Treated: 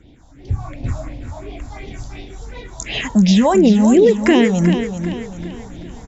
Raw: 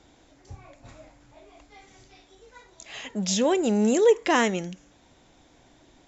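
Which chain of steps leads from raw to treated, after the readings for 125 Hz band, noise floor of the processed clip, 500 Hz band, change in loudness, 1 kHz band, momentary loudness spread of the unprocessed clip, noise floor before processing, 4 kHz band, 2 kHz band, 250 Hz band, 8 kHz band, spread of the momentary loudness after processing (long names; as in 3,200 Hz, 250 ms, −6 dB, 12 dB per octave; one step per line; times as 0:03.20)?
+17.5 dB, −45 dBFS, +7.5 dB, +7.5 dB, +6.0 dB, 19 LU, −58 dBFS, +7.5 dB, +6.0 dB, +13.5 dB, can't be measured, 22 LU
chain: low-shelf EQ 490 Hz +9.5 dB
all-pass phaser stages 4, 2.8 Hz, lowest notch 360–1,400 Hz
downward compressor 6 to 1, threshold −26 dBFS, peak gain reduction 12 dB
on a send: repeating echo 389 ms, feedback 43%, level −9 dB
on the sum: automatic gain control gain up to 13 dB
level +3.5 dB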